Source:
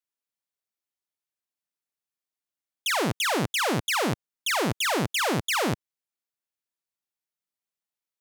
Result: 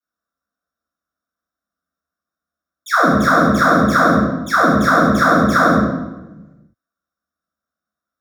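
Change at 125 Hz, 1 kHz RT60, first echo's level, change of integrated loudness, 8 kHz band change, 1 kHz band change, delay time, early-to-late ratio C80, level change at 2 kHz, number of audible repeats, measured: +11.5 dB, 0.95 s, none, +12.0 dB, -1.5 dB, +15.0 dB, none, 3.5 dB, +12.0 dB, none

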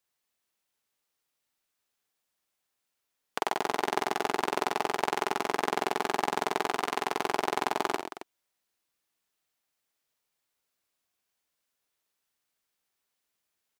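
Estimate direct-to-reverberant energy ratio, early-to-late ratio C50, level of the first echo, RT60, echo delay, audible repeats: none, none, -8.0 dB, none, 51 ms, 3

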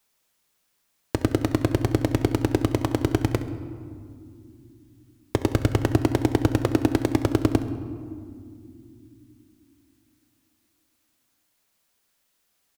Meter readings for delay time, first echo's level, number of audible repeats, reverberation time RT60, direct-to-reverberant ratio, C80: 67 ms, -16.0 dB, 1, 2.5 s, 9.0 dB, 12.0 dB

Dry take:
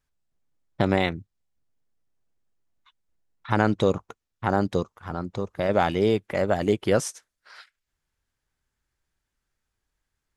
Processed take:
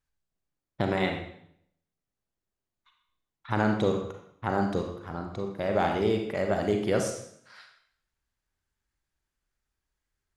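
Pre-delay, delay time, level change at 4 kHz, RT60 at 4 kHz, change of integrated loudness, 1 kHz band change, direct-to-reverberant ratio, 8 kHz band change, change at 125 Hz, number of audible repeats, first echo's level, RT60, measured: 34 ms, none, -4.0 dB, 0.65 s, -3.5 dB, -3.5 dB, 2.5 dB, -4.0 dB, -4.0 dB, none, none, 0.65 s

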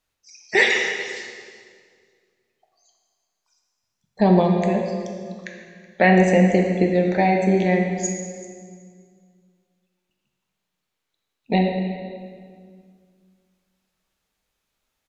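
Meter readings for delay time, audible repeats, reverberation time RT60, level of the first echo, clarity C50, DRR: 0.375 s, 1, 2.0 s, -21.0 dB, 3.5 dB, 1.0 dB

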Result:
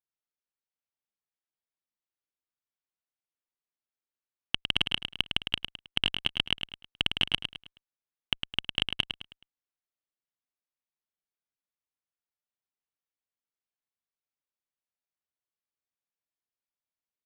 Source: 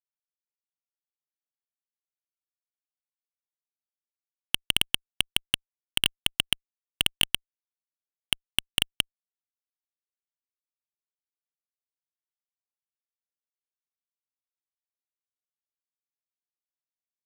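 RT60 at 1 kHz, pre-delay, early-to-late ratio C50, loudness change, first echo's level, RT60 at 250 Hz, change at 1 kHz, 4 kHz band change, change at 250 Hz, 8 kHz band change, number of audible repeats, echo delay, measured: none, none, none, -3.0 dB, -7.0 dB, none, 0.0 dB, -2.0 dB, +0.5 dB, -19.0 dB, 4, 0.106 s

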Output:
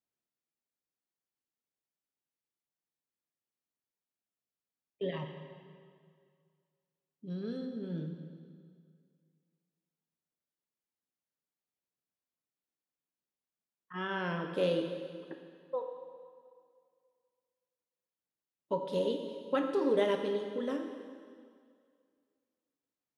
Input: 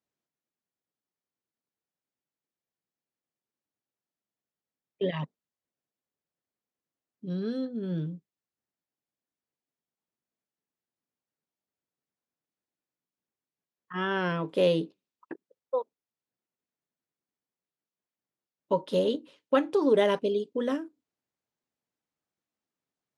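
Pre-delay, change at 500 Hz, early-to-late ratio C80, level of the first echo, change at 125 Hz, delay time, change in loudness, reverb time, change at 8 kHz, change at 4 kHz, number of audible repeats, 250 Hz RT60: 7 ms, -5.5 dB, 7.0 dB, none, -6.0 dB, none, -6.0 dB, 2.1 s, n/a, -5.5 dB, none, 2.1 s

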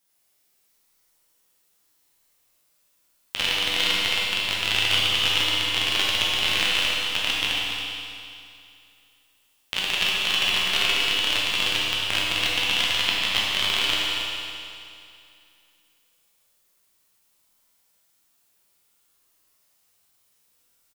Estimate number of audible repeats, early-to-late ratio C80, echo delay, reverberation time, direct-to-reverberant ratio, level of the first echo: 1, -1.5 dB, 0.276 s, 2.5 s, -6.0 dB, -7.5 dB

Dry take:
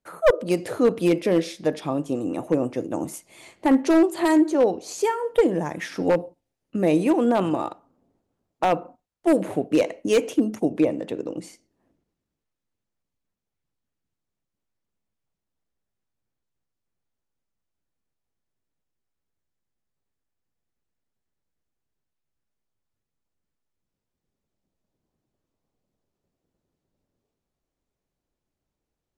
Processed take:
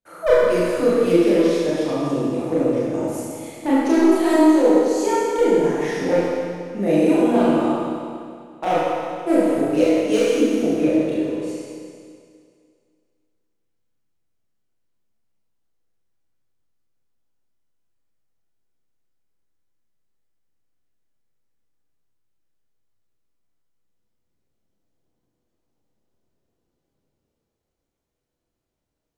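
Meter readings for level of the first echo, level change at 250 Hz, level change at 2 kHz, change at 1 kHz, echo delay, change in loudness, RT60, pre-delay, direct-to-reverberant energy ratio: none, +4.5 dB, +3.5 dB, +3.0 dB, none, +4.0 dB, 2.2 s, 29 ms, -9.5 dB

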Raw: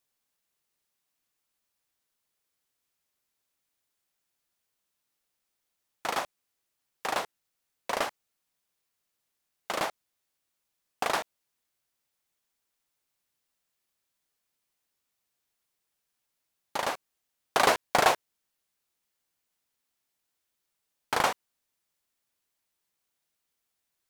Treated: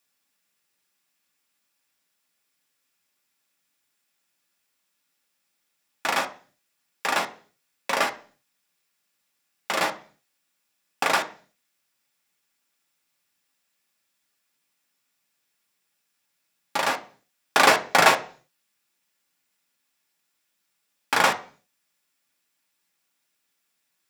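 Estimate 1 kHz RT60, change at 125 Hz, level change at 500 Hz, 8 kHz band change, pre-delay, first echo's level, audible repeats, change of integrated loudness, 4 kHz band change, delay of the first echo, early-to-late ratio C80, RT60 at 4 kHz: 0.40 s, +4.5 dB, +4.0 dB, +6.5 dB, 3 ms, none, none, +6.5 dB, +7.0 dB, none, 20.5 dB, 0.50 s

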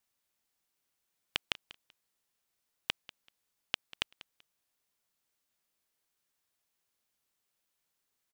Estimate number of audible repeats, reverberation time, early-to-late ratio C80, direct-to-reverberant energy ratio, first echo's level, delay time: 2, none, none, none, -18.5 dB, 0.192 s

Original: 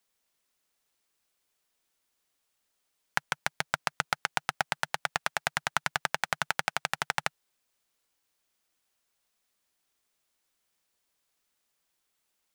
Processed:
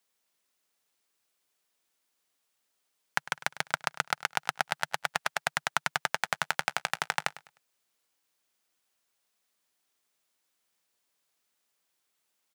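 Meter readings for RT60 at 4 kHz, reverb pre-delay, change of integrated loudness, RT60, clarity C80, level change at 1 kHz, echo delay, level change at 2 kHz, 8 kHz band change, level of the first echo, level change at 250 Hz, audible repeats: none, none, 0.0 dB, none, none, 0.0 dB, 0.102 s, 0.0 dB, 0.0 dB, -17.5 dB, -1.5 dB, 2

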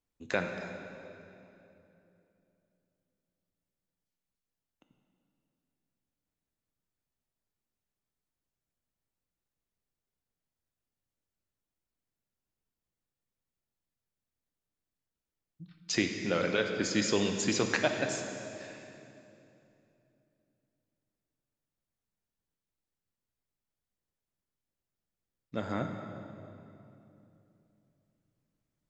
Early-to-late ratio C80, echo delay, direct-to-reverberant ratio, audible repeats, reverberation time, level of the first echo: 6.0 dB, none, 4.0 dB, none, 2.9 s, none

